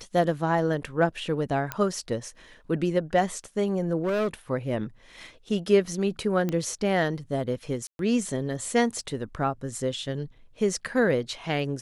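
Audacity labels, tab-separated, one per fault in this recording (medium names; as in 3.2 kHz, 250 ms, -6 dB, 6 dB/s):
1.720000	1.720000	pop -13 dBFS
4.030000	4.280000	clipped -22.5 dBFS
6.490000	6.490000	pop -16 dBFS
7.870000	7.990000	dropout 122 ms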